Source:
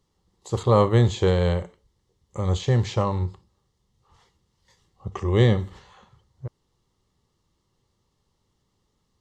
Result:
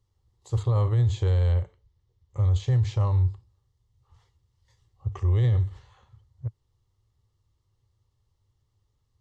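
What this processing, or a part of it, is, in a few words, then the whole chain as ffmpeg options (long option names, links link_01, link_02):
car stereo with a boomy subwoofer: -filter_complex "[0:a]lowshelf=frequency=140:width_type=q:width=3:gain=8.5,alimiter=limit=-8.5dB:level=0:latency=1:release=19,asettb=1/sr,asplit=3[link_01][link_02][link_03];[link_01]atrim=end=1.514[link_04];[link_02]atrim=start=1.51:end=2.56,asetpts=PTS-STARTPTS,afade=type=in:duration=0.004:curve=qsin,afade=type=out:start_time=1.046:duration=0.004:curve=qsin,lowpass=5900[link_05];[link_03]atrim=start=2.556[link_06];[link_04][link_05]acrossfade=duration=0.004:curve1=hsin:curve2=qsin[link_07];[link_07][link_06]acrossfade=duration=0.004:curve1=qsin:curve2=hsin,volume=-8dB"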